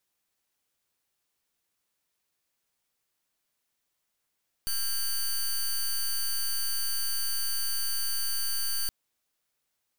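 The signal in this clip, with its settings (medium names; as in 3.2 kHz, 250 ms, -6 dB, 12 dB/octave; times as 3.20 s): pulse 4.57 kHz, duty 14% -28.5 dBFS 4.22 s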